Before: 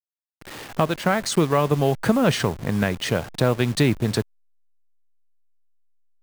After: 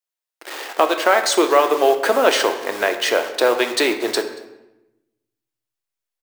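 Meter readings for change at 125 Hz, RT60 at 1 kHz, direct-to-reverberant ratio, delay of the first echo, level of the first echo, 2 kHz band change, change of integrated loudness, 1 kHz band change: below −30 dB, 0.90 s, 6.0 dB, 231 ms, −25.0 dB, +7.5 dB, +4.0 dB, +7.5 dB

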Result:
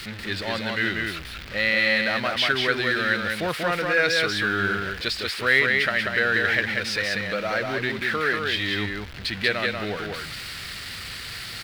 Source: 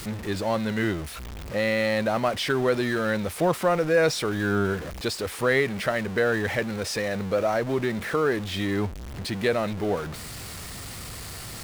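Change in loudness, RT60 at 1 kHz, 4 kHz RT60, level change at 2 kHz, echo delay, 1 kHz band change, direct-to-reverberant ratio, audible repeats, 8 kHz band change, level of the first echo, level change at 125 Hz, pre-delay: +2.0 dB, no reverb audible, no reverb audible, +8.5 dB, 188 ms, +0.5 dB, no reverb audible, 1, −2.5 dB, −3.5 dB, −4.0 dB, no reverb audible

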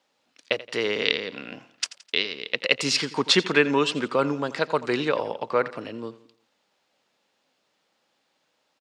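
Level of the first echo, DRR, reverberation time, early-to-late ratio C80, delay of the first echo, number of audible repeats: −17.0 dB, no reverb audible, no reverb audible, no reverb audible, 85 ms, 3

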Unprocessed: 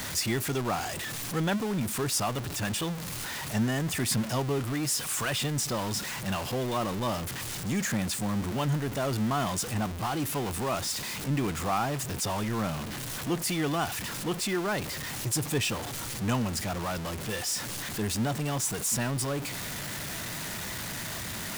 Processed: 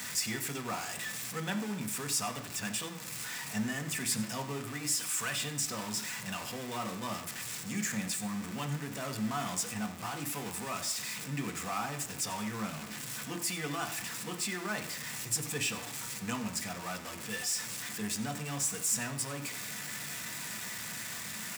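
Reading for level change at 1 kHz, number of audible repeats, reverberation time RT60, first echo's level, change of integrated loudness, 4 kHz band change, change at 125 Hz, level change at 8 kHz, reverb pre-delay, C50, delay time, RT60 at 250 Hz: −6.5 dB, 1, 1.0 s, −15.5 dB, −4.5 dB, −4.0 dB, −10.0 dB, −1.5 dB, 3 ms, 11.0 dB, 91 ms, 0.90 s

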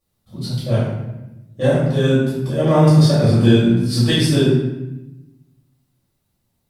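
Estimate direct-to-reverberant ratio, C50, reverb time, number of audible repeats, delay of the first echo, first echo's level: −10.5 dB, −0.5 dB, 0.95 s, no echo audible, no echo audible, no echo audible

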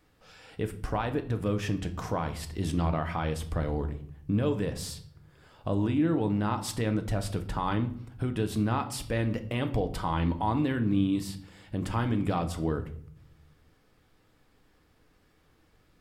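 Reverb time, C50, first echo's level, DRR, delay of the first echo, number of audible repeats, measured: 0.60 s, 13.5 dB, no echo audible, 7.0 dB, no echo audible, no echo audible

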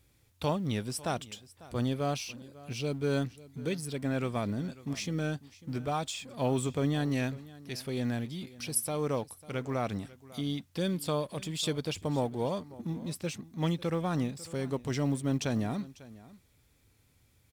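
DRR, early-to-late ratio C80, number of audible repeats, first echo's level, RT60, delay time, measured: no reverb audible, no reverb audible, 1, −19.5 dB, no reverb audible, 547 ms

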